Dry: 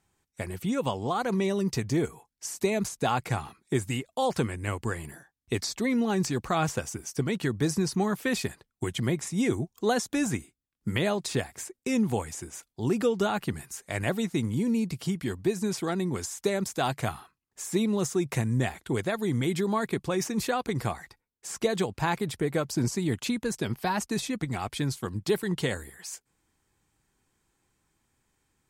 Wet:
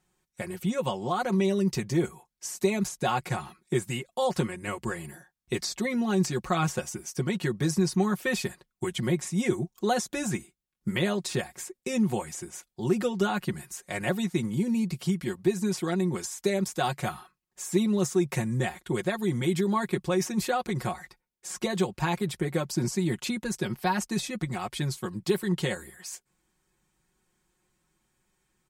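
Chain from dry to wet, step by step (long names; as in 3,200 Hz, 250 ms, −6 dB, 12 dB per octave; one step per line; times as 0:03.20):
comb filter 5.5 ms, depth 76%
level −2 dB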